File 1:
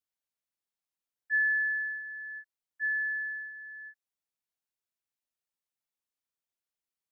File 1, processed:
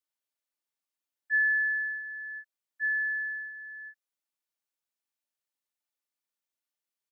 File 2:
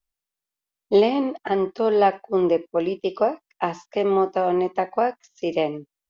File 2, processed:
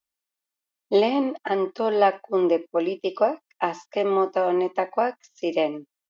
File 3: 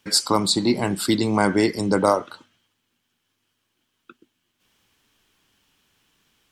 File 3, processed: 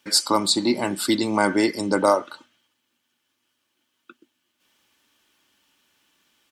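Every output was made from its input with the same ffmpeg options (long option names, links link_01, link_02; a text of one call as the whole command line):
ffmpeg -i in.wav -af "highpass=frequency=250:poles=1,aecho=1:1:3.4:0.33" out.wav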